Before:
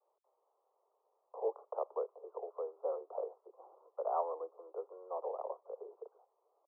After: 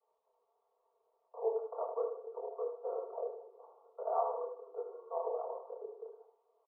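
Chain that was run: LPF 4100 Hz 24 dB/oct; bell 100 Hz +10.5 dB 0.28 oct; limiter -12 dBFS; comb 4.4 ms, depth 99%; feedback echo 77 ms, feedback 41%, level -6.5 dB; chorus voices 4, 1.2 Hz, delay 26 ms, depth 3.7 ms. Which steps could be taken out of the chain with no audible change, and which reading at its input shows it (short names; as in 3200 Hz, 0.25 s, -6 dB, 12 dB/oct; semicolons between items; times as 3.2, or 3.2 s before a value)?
LPF 4100 Hz: input band ends at 1400 Hz; bell 100 Hz: input band starts at 320 Hz; limiter -12 dBFS: input peak -21.5 dBFS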